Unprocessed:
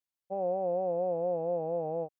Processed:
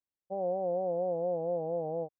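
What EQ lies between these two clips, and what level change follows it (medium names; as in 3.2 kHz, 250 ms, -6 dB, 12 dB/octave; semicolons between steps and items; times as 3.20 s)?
low-pass 1 kHz 12 dB/octave; distance through air 190 m; 0.0 dB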